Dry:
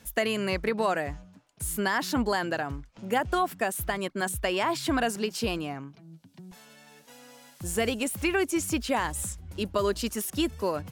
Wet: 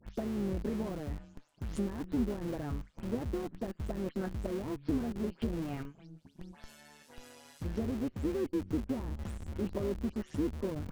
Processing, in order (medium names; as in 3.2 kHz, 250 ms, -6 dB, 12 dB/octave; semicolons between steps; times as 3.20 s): delay that grows with frequency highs late, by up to 150 ms; low-pass that closes with the level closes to 360 Hz, closed at -25 dBFS; dynamic bell 720 Hz, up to -7 dB, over -47 dBFS, Q 1.2; AM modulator 150 Hz, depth 50%; in parallel at -6 dB: Schmitt trigger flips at -42 dBFS